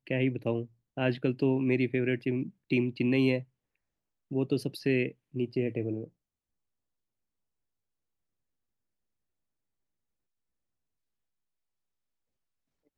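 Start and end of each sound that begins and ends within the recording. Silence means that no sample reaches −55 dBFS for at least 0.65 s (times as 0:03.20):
0:04.31–0:06.09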